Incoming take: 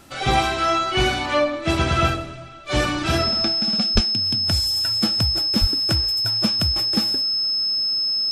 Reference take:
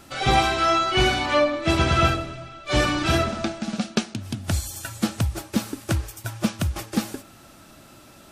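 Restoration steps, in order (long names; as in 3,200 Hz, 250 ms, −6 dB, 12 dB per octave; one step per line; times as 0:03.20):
notch filter 5,200 Hz, Q 30
0:03.94–0:04.06: high-pass filter 140 Hz 24 dB per octave
0:05.60–0:05.72: high-pass filter 140 Hz 24 dB per octave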